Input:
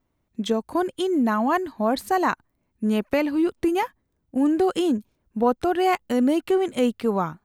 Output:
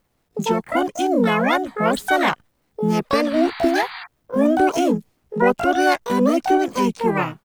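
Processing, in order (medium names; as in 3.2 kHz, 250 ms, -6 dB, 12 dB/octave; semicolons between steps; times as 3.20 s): painted sound noise, 3.30–4.06 s, 870–2400 Hz -38 dBFS; bit crusher 12-bit; harmony voices -4 st -3 dB, +12 st -1 dB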